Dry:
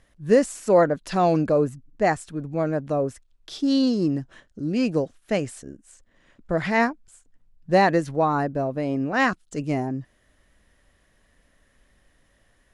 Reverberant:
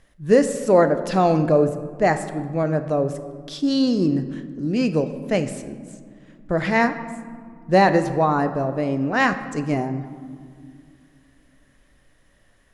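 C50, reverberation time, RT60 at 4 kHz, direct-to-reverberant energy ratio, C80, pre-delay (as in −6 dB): 11.0 dB, 2.2 s, 1.0 s, 9.0 dB, 12.5 dB, 5 ms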